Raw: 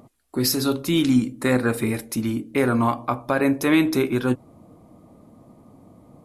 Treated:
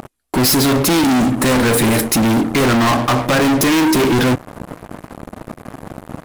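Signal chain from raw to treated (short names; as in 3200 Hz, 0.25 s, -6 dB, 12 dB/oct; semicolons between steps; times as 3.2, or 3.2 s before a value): sample leveller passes 5; soft clip -19.5 dBFS, distortion -12 dB; gain +7 dB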